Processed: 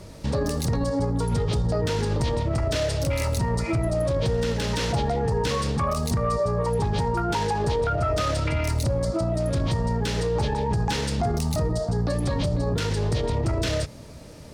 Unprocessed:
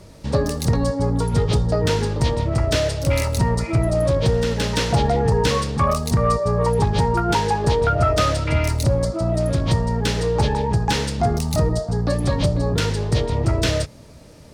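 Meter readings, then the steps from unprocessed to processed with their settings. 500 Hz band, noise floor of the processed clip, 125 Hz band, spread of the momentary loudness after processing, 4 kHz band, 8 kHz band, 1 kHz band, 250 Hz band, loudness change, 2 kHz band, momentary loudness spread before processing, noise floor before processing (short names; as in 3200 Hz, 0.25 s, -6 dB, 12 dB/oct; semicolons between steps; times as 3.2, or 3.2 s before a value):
-4.5 dB, -42 dBFS, -5.0 dB, 1 LU, -5.0 dB, -4.5 dB, -5.5 dB, -4.0 dB, -5.0 dB, -5.0 dB, 3 LU, -43 dBFS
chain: limiter -18.5 dBFS, peak gain reduction 9.5 dB; gain +1.5 dB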